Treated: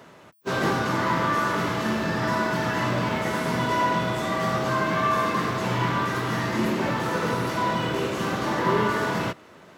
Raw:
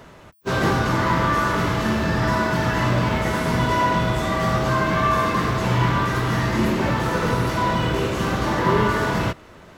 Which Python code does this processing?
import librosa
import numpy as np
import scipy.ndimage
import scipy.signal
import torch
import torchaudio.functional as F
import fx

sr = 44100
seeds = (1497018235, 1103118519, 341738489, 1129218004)

y = scipy.signal.sosfilt(scipy.signal.butter(2, 150.0, 'highpass', fs=sr, output='sos'), x)
y = y * 10.0 ** (-3.0 / 20.0)